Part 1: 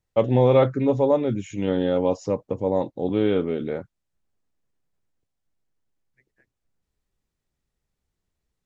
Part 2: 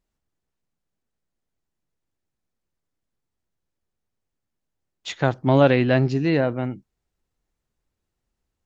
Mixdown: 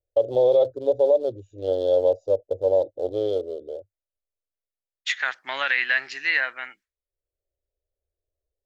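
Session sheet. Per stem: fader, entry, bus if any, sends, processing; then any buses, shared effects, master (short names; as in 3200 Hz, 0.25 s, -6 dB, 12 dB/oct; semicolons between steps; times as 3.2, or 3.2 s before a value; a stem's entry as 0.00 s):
-6.0 dB, 0.00 s, no send, Wiener smoothing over 41 samples; EQ curve 100 Hz 0 dB, 170 Hz -29 dB, 360 Hz +2 dB, 590 Hz +15 dB, 1100 Hz -10 dB, 2300 Hz -15 dB, 3400 Hz +9 dB; auto duck -17 dB, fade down 1.95 s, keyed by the second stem
+2.0 dB, 0.00 s, no send, expander -37 dBFS; vibrato 0.35 Hz 15 cents; resonant high-pass 1800 Hz, resonance Q 3.5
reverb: off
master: limiter -11 dBFS, peak gain reduction 8 dB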